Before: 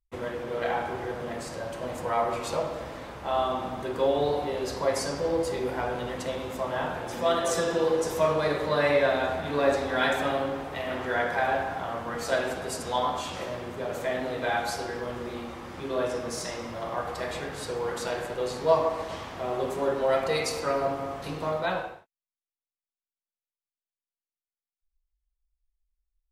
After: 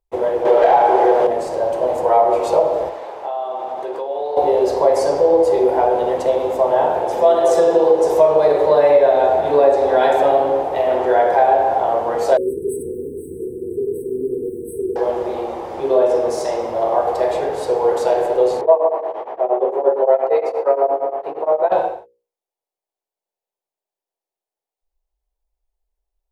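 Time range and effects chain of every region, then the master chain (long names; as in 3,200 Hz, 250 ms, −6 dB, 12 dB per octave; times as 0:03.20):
0:00.45–0:01.27: high-shelf EQ 3,000 Hz +8.5 dB + mid-hump overdrive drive 20 dB, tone 1,600 Hz, clips at −12.5 dBFS
0:02.89–0:04.37: high-pass filter 840 Hz 6 dB per octave + high-shelf EQ 7,400 Hz −8.5 dB + downward compressor 5 to 1, threshold −37 dBFS
0:12.37–0:14.96: mu-law and A-law mismatch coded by mu + linear-phase brick-wall band-stop 470–7,900 Hz
0:18.61–0:21.72: three-way crossover with the lows and the highs turned down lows −21 dB, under 290 Hz, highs −22 dB, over 2,400 Hz + tremolo along a rectified sine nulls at 8.6 Hz
whole clip: flat-topped bell 570 Hz +15.5 dB; mains-hum notches 60/120/180/240/300/360/420/480/540 Hz; downward compressor 3 to 1, threshold −12 dBFS; level +2 dB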